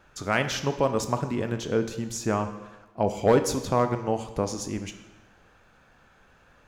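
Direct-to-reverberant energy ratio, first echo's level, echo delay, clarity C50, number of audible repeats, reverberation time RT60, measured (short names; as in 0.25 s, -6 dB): 8.0 dB, none, none, 10.0 dB, none, 1.1 s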